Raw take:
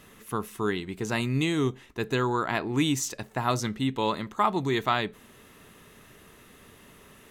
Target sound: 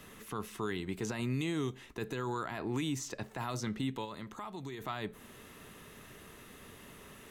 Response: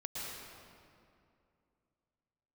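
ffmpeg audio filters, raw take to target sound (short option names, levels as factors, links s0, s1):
-filter_complex "[0:a]acrossover=split=110|1900|7300[s0][s1][s2][s3];[s0]acompressor=threshold=0.00398:ratio=4[s4];[s1]acompressor=threshold=0.0251:ratio=4[s5];[s2]acompressor=threshold=0.00708:ratio=4[s6];[s3]acompressor=threshold=0.00178:ratio=4[s7];[s4][s5][s6][s7]amix=inputs=4:normalize=0,alimiter=level_in=1.26:limit=0.0631:level=0:latency=1:release=10,volume=0.794,asplit=3[s8][s9][s10];[s8]afade=t=out:st=4.04:d=0.02[s11];[s9]acompressor=threshold=0.00794:ratio=3,afade=t=in:st=4.04:d=0.02,afade=t=out:st=4.8:d=0.02[s12];[s10]afade=t=in:st=4.8:d=0.02[s13];[s11][s12][s13]amix=inputs=3:normalize=0"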